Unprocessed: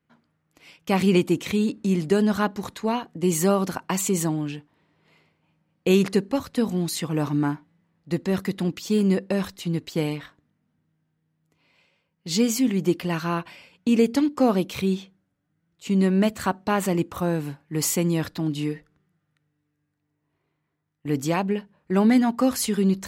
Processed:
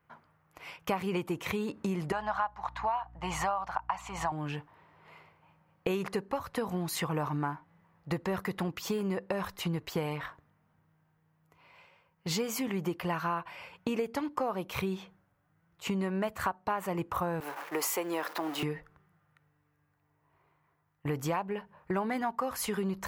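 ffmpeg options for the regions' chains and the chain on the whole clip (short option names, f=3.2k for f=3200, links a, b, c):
-filter_complex "[0:a]asettb=1/sr,asplit=3[a][b][c];[a]atrim=end=2.124[d];[b]atrim=start=2.12:end=4.32,asetpts=PTS-STARTPTS,afade=t=in:d=0.004:c=qsin,afade=t=out:st=2.196:d=0.004:c=qsin,lowpass=4.6k,lowshelf=f=560:t=q:w=3:g=-10.5,aeval=exprs='val(0)+0.00562*(sin(2*PI*60*n/s)+sin(2*PI*2*60*n/s)/2+sin(2*PI*3*60*n/s)/3+sin(2*PI*4*60*n/s)/4+sin(2*PI*5*60*n/s)/5)':c=same[e];[c]atrim=start=4.316[f];[d][e]acrossfade=d=0.004:c1=hsin:c2=qsin[g];[g][f]acrossfade=d=0.004:c1=qsin:c2=hsin,asettb=1/sr,asplit=3[h][i][j];[h]atrim=end=17.404[k];[i]atrim=start=17.4:end=18.63,asetpts=PTS-STARTPTS,afade=t=in:d=0.004:c=qsin,afade=t=out:st=1.226:d=0.004:c=qsin,aeval=exprs='val(0)+0.5*0.0168*sgn(val(0))':c=same,highpass=f=310:w=0.5412,highpass=f=310:w=1.3066,agate=range=-33dB:threshold=-40dB:ratio=3:release=100:detection=peak[l];[j]atrim=start=18.626[m];[k][l]acrossfade=d=0.004:c1=hsin:c2=qsin[n];[n][m]acrossfade=d=0.004:c1=qsin:c2=hsin,equalizer=f=250:t=o:w=1:g=-12,equalizer=f=1k:t=o:w=1:g=7,equalizer=f=4k:t=o:w=1:g=-7,equalizer=f=8k:t=o:w=1:g=-8,acompressor=threshold=-36dB:ratio=6,volume=6dB"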